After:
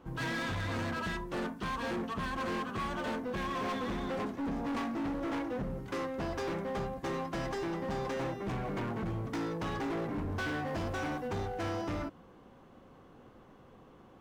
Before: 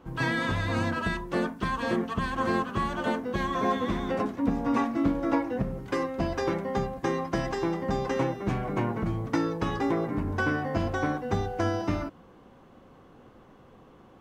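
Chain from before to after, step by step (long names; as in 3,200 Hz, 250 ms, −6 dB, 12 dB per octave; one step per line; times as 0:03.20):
0:10.66–0:11.28: high-shelf EQ 4,900 Hz +6 dB
hard clipping −29.5 dBFS, distortion −7 dB
level −3 dB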